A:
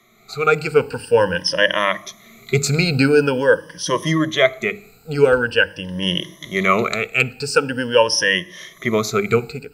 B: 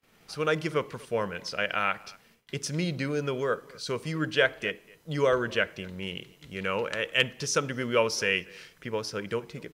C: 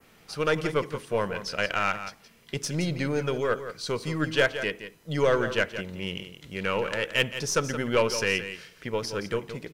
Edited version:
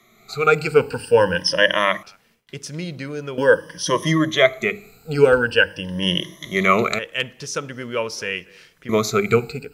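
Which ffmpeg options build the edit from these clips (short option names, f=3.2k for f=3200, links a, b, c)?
-filter_complex "[1:a]asplit=2[a][b];[0:a]asplit=3[c][d][e];[c]atrim=end=2.032[f];[a]atrim=start=2.028:end=3.382[g];[d]atrim=start=3.378:end=6.992[h];[b]atrim=start=6.988:end=8.892[i];[e]atrim=start=8.888[j];[f][g]acrossfade=d=0.004:c1=hsin:c2=hsin[k];[k][h]acrossfade=d=0.004:c1=hsin:c2=hsin[l];[l][i]acrossfade=d=0.004:c1=hsin:c2=hsin[m];[m][j]acrossfade=d=0.004:c1=hsin:c2=hsin"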